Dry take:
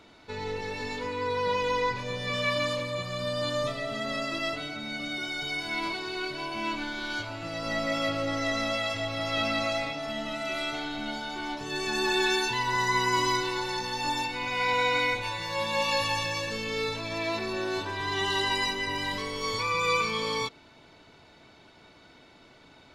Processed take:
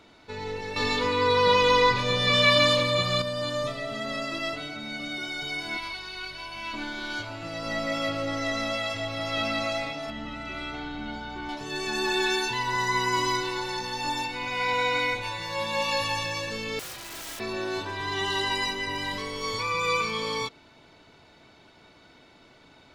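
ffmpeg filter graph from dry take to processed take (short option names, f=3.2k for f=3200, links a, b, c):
-filter_complex "[0:a]asettb=1/sr,asplit=3[a][b][c];[a]atrim=end=0.764[d];[b]atrim=start=0.76:end=3.22,asetpts=PTS-STARTPTS,afade=t=in:d=0.004:c=qsin,afade=t=out:st=2.456:d=0.004:c=qsin,equalizer=f=3.7k:t=o:w=0.65:g=6.5,aeval=exprs='val(0)+0.00708*sin(2*PI*1200*n/s)':c=same,acontrast=83[e];[c]atrim=start=3.216[f];[d][e]acrossfade=d=0.004:c1=hsin:c2=qsin[g];[g][f]acrossfade=d=0.004:c1=qsin:c2=hsin,asettb=1/sr,asplit=3[h][i][j];[h]atrim=end=5.774[k];[i]atrim=start=5.77:end=6.74,asetpts=PTS-STARTPTS,afade=t=in:d=0.004:c=qsin,afade=t=out:st=0.966:d=0.004:c=qsin,equalizer=f=280:t=o:w=2.6:g=-14.5,bandreject=f=7.4k:w=5.7,aeval=exprs='val(0)+0.002*(sin(2*PI*50*n/s)+sin(2*PI*2*50*n/s)/2+sin(2*PI*3*50*n/s)/3+sin(2*PI*4*50*n/s)/4+sin(2*PI*5*50*n/s)/5)':c=same[l];[j]atrim=start=6.736[m];[k][l]acrossfade=d=0.004:c1=hsin:c2=qsin[n];[n][m]acrossfade=d=0.004:c1=qsin:c2=hsin,asettb=1/sr,asplit=3[o][p][q];[o]atrim=end=10.104[r];[p]atrim=start=10.1:end=11.49,asetpts=PTS-STARTPTS,afade=t=in:d=0.004:c=qsin,afade=t=out:st=1.386:d=0.004:c=qsin,aemphasis=mode=reproduction:type=75kf,bandreject=f=650:w=9,aeval=exprs='val(0)+0.00562*(sin(2*PI*60*n/s)+sin(2*PI*2*60*n/s)/2+sin(2*PI*3*60*n/s)/3+sin(2*PI*4*60*n/s)/4+sin(2*PI*5*60*n/s)/5)':c=same[s];[q]atrim=start=11.486[t];[r][s]acrossfade=d=0.004:c1=hsin:c2=qsin[u];[u][t]acrossfade=d=0.004:c1=qsin:c2=hsin,asettb=1/sr,asplit=3[v][w][x];[v]atrim=end=16.794[y];[w]atrim=start=16.79:end=17.4,asetpts=PTS-STARTPTS,afade=t=in:d=0.004:c=qsin,afade=t=out:st=0.606:d=0.004:c=qsin,highpass=f=500:p=1,aeval=exprs='val(0)*sin(2*PI*320*n/s)':c=same,aeval=exprs='(mod(42.2*val(0)+1,2)-1)/42.2':c=same[z];[x]atrim=start=17.396[aa];[y][z]acrossfade=d=0.004:c1=hsin:c2=qsin[ab];[ab][aa]acrossfade=d=0.004:c1=qsin:c2=hsin"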